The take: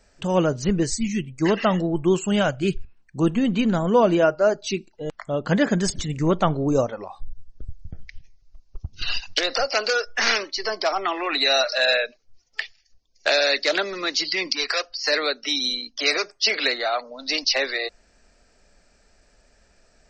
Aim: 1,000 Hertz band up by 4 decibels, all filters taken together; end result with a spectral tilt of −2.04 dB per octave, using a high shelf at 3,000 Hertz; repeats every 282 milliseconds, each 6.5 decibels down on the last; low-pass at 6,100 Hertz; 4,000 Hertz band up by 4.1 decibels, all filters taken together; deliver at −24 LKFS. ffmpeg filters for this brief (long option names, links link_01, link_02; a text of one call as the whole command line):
ffmpeg -i in.wav -af "lowpass=6100,equalizer=frequency=1000:width_type=o:gain=5.5,highshelf=frequency=3000:gain=-4,equalizer=frequency=4000:width_type=o:gain=8,aecho=1:1:282|564|846|1128|1410|1692:0.473|0.222|0.105|0.0491|0.0231|0.0109,volume=-4.5dB" out.wav